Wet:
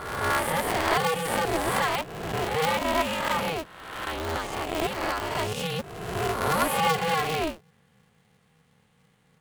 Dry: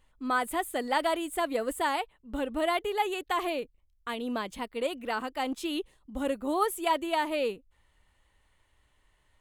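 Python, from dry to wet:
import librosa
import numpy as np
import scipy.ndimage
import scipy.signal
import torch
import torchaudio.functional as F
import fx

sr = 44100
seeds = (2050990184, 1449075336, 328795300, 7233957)

y = fx.spec_swells(x, sr, rise_s=1.27)
y = y * np.sign(np.sin(2.0 * np.pi * 160.0 * np.arange(len(y)) / sr))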